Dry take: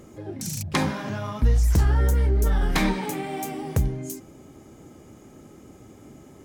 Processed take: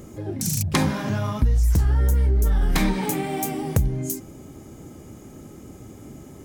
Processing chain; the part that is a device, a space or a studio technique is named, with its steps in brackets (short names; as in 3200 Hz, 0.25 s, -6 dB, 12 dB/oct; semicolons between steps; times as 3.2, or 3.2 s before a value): ASMR close-microphone chain (low shelf 240 Hz +6.5 dB; compressor 6:1, threshold -18 dBFS, peak gain reduction 9.5 dB; high shelf 7400 Hz +8 dB); gain +2 dB